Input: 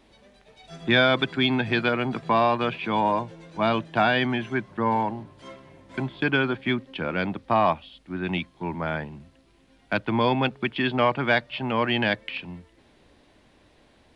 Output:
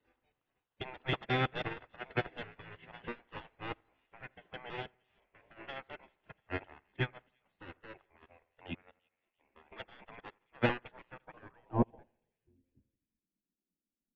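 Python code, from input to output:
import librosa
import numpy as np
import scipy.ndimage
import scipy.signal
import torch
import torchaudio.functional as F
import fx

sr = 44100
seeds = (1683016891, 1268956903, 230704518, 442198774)

y = fx.block_reorder(x, sr, ms=162.0, group=5)
y = 10.0 ** (-18.5 / 20.0) * np.tanh(y / 10.0 ** (-18.5 / 20.0))
y = fx.dynamic_eq(y, sr, hz=1100.0, q=3.1, threshold_db=-42.0, ratio=4.0, max_db=-5)
y = fx.filter_sweep_lowpass(y, sr, from_hz=2300.0, to_hz=120.0, start_s=10.73, end_s=13.02, q=7.3)
y = fx.spec_gate(y, sr, threshold_db=-15, keep='weak')
y = fx.tilt_shelf(y, sr, db=6.5, hz=1400.0)
y = fx.echo_split(y, sr, split_hz=2100.0, low_ms=83, high_ms=341, feedback_pct=52, wet_db=-15.0)
y = fx.upward_expand(y, sr, threshold_db=-41.0, expansion=2.5)
y = y * 10.0 ** (1.0 / 20.0)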